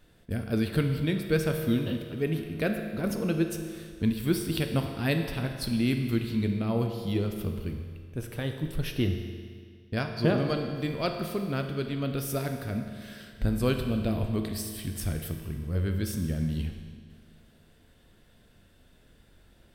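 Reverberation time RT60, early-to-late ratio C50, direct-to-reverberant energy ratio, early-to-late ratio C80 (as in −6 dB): 2.0 s, 6.0 dB, 4.5 dB, 7.5 dB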